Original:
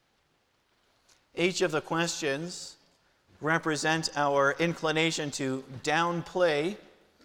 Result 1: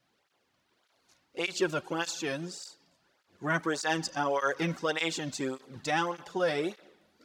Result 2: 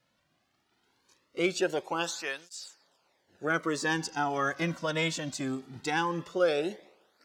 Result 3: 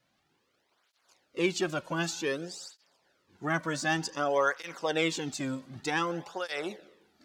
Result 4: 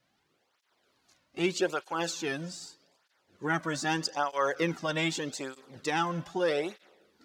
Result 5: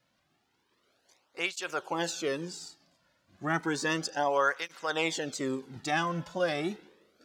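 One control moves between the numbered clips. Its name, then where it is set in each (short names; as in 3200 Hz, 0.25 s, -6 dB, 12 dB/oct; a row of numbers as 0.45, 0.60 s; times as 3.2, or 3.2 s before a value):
tape flanging out of phase, nulls at: 1.7, 0.2, 0.54, 0.81, 0.32 Hz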